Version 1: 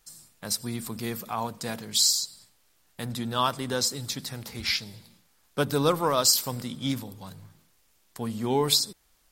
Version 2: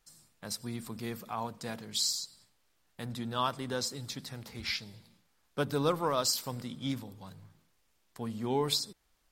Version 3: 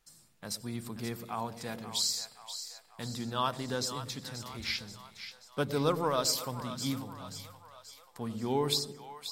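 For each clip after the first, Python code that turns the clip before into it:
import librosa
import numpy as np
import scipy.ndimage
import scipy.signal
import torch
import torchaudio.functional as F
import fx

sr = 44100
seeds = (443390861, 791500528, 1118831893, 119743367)

y1 = fx.high_shelf(x, sr, hz=6000.0, db=-7.5)
y1 = y1 * 10.0 ** (-5.5 / 20.0)
y2 = fx.echo_split(y1, sr, split_hz=630.0, low_ms=110, high_ms=532, feedback_pct=52, wet_db=-10.5)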